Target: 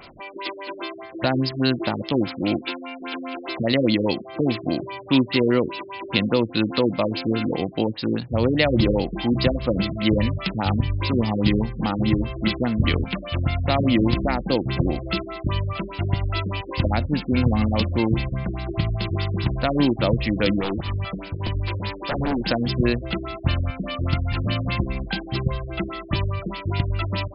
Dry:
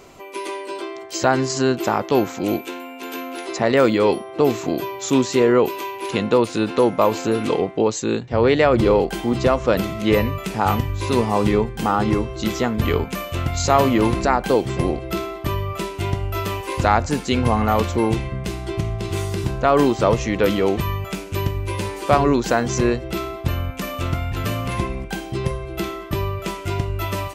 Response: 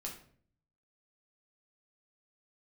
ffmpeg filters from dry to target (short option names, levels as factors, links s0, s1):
-filter_complex "[0:a]equalizer=f=420:w=4.5:g=-12,acrossover=split=580|2200[s0][s1][s2];[s1]acompressor=threshold=0.0158:ratio=10[s3];[s0][s3][s2]amix=inputs=3:normalize=0,crystalizer=i=4.5:c=0,asettb=1/sr,asplit=3[s4][s5][s6];[s4]atrim=end=20.614[s7];[s5]atrim=start=20.61:end=22.44,asetpts=PTS-STARTPTS,afade=t=in:d=0.004:c=qsin,afade=t=out:st=1.826:d=0.004:c=qsin,aeval=exprs='0.119*(abs(mod(val(0)/0.119+3,4)-2)-1)':c=same[s8];[s6]atrim=start=22.436[s9];[s7][s8]acrossfade=d=0.004:c1=hsin:c2=qsin[s10];[s10][s9]acrossfade=d=0.004:c1=qsin:c2=hsin,acrusher=bits=8:mix=0:aa=0.000001,asoftclip=type=hard:threshold=0.75,aeval=exprs='val(0)+0.0562*sin(2*PI*5900*n/s)':c=same,afftfilt=real='re*lt(b*sr/1024,480*pow(5400/480,0.5+0.5*sin(2*PI*4.9*pts/sr)))':imag='im*lt(b*sr/1024,480*pow(5400/480,0.5+0.5*sin(2*PI*4.9*pts/sr)))':win_size=1024:overlap=0.75,volume=1.12"